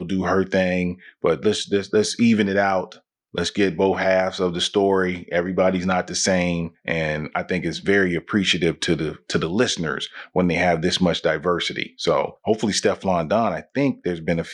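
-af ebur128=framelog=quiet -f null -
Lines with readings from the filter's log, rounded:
Integrated loudness:
  I:         -21.4 LUFS
  Threshold: -31.5 LUFS
Loudness range:
  LRA:         1.4 LU
  Threshold: -41.4 LUFS
  LRA low:   -22.0 LUFS
  LRA high:  -20.5 LUFS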